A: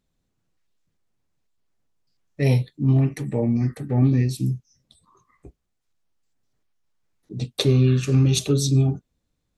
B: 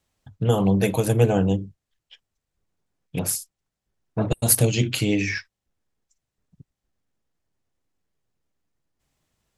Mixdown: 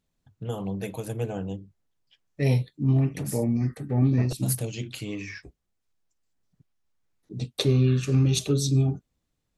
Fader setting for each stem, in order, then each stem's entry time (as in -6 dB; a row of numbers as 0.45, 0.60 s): -3.5, -12.0 dB; 0.00, 0.00 s